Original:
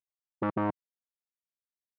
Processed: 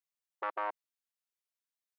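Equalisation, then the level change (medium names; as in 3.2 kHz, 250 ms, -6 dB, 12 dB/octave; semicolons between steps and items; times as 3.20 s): Bessel high-pass 830 Hz, order 6; +1.0 dB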